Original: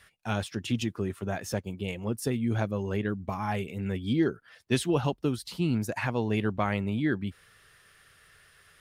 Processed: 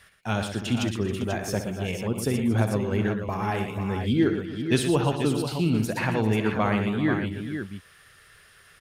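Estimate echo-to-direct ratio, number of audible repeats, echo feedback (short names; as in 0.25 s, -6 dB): -3.5 dB, 5, no steady repeat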